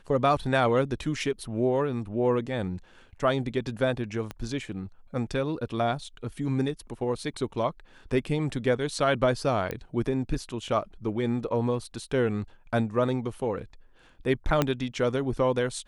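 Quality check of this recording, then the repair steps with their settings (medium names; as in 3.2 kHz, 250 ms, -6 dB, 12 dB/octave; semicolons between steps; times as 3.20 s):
4.31 s: pop -20 dBFS
9.71 s: pop -18 dBFS
14.62 s: pop -9 dBFS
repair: de-click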